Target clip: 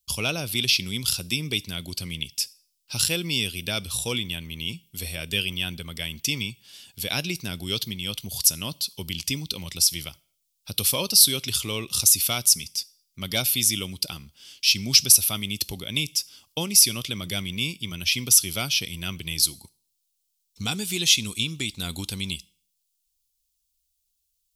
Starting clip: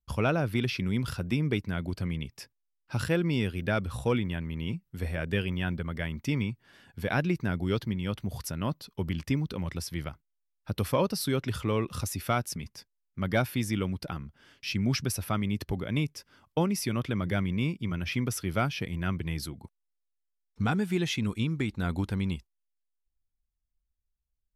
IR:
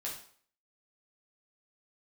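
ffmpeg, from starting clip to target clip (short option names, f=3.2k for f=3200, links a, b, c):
-filter_complex "[0:a]aexciter=amount=11.6:drive=5.1:freq=2.6k,asplit=2[a][b];[1:a]atrim=start_sample=2205,highshelf=f=4.9k:g=9[c];[b][c]afir=irnorm=-1:irlink=0,volume=-22dB[d];[a][d]amix=inputs=2:normalize=0,volume=-4.5dB"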